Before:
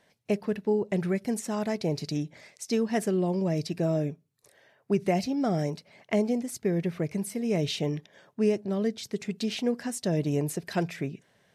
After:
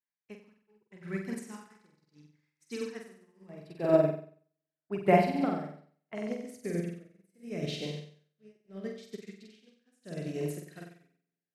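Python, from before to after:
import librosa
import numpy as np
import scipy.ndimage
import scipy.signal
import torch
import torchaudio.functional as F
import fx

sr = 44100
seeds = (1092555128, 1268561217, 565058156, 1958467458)

y = fx.peak_eq(x, sr, hz=fx.steps((0.0, 650.0), (3.49, 6100.0), (6.15, 900.0)), db=-14.5, octaves=0.63)
y = y * (1.0 - 0.8 / 2.0 + 0.8 / 2.0 * np.cos(2.0 * np.pi * 0.77 * (np.arange(len(y)) / sr)))
y = fx.peak_eq(y, sr, hz=1300.0, db=8.5, octaves=2.4)
y = fx.room_flutter(y, sr, wall_m=8.0, rt60_s=1.2)
y = fx.upward_expand(y, sr, threshold_db=-44.0, expansion=2.5)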